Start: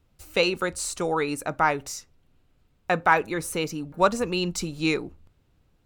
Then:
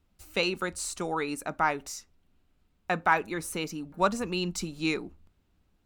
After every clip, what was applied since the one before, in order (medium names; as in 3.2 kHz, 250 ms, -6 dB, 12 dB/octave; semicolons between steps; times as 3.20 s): graphic EQ with 31 bands 125 Hz -12 dB, 200 Hz +4 dB, 500 Hz -5 dB; trim -4 dB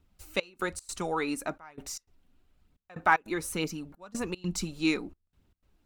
phaser 1.1 Hz, delay 4.2 ms, feedback 34%; trance gate "xxxx..xx.xxx" 152 bpm -24 dB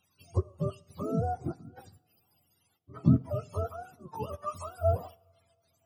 spectrum inverted on a logarithmic axis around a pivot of 460 Hz; two-slope reverb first 0.68 s, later 3.1 s, from -20 dB, DRR 19 dB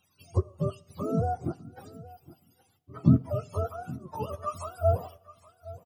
delay 818 ms -19 dB; trim +2.5 dB